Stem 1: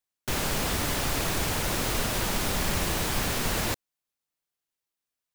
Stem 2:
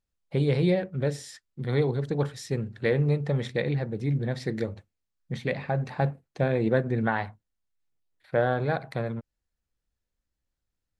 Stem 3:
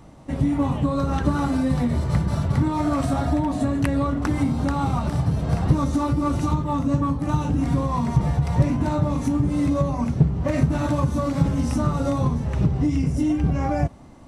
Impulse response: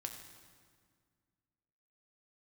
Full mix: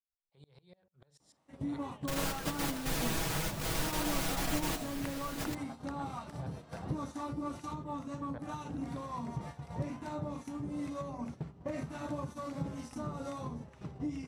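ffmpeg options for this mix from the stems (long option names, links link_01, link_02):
-filter_complex "[0:a]aecho=1:1:6.2:0.87,adelay=1800,volume=-9dB[link_01];[1:a]equalizer=frequency=125:width_type=o:width=1:gain=-9,equalizer=frequency=250:width_type=o:width=1:gain=-11,equalizer=frequency=500:width_type=o:width=1:gain=-4,equalizer=frequency=1000:width_type=o:width=1:gain=8,equalizer=frequency=2000:width_type=o:width=1:gain=-7,equalizer=frequency=4000:width_type=o:width=1:gain=5,equalizer=frequency=8000:width_type=o:width=1:gain=5,acrossover=split=150[link_02][link_03];[link_03]acompressor=threshold=-43dB:ratio=3[link_04];[link_02][link_04]amix=inputs=2:normalize=0,aeval=exprs='val(0)*pow(10,-25*if(lt(mod(-6.8*n/s,1),2*abs(-6.8)/1000),1-mod(-6.8*n/s,1)/(2*abs(-6.8)/1000),(mod(-6.8*n/s,1)-2*abs(-6.8)/1000)/(1-2*abs(-6.8)/1000))/20)':channel_layout=same,volume=-5dB,asplit=2[link_05][link_06];[2:a]highpass=frequency=300:poles=1,acrossover=split=830[link_07][link_08];[link_07]aeval=exprs='val(0)*(1-0.5/2+0.5/2*cos(2*PI*2.1*n/s))':channel_layout=same[link_09];[link_08]aeval=exprs='val(0)*(1-0.5/2-0.5/2*cos(2*PI*2.1*n/s))':channel_layout=same[link_10];[link_09][link_10]amix=inputs=2:normalize=0,adelay=1200,volume=-11dB[link_11];[link_06]apad=whole_len=315430[link_12];[link_01][link_12]sidechaingate=range=-10dB:threshold=-58dB:ratio=16:detection=peak[link_13];[link_13][link_05][link_11]amix=inputs=3:normalize=0,agate=range=-10dB:threshold=-43dB:ratio=16:detection=peak"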